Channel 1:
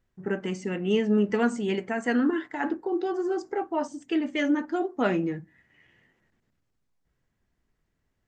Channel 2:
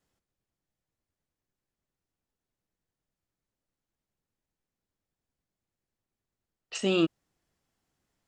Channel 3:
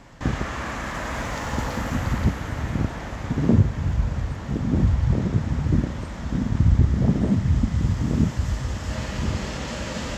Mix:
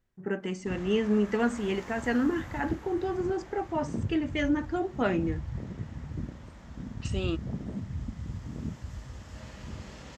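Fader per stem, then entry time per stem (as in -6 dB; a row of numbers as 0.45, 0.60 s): -2.5, -7.5, -15.5 dB; 0.00, 0.30, 0.45 s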